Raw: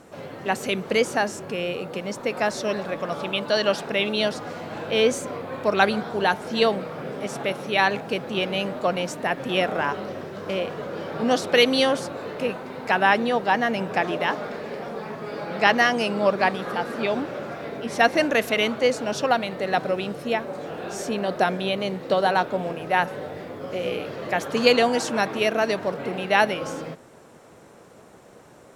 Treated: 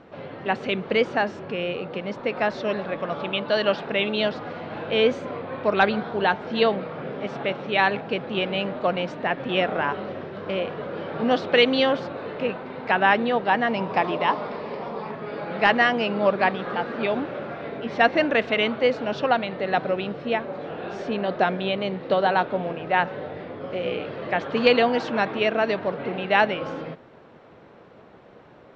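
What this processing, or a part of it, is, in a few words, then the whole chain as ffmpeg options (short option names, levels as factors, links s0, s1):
synthesiser wavefolder: -filter_complex "[0:a]aeval=exprs='0.531*(abs(mod(val(0)/0.531+3,4)-2)-1)':c=same,lowpass=f=3800:w=0.5412,lowpass=f=3800:w=1.3066,asettb=1/sr,asplit=3[s0][s1][s2];[s0]atrim=end=13.674[s3];[s1]atrim=start=13.67:end=15.11,asetpts=PTS-STARTPTS,afade=t=in:d=0.004:c=qsin,afade=t=out:st=1.436:d=0.004:c=qsin,equalizer=f=1000:t=o:w=0.33:g=9,equalizer=f=1600:t=o:w=0.33:g=-6,equalizer=f=5000:t=o:w=0.33:g=8[s4];[s2]atrim=start=15.106[s5];[s3][s4]acrossfade=d=0.004:c1=hsin:c2=qsin[s6];[s6][s5]acrossfade=d=0.004:c1=qsin:c2=hsin"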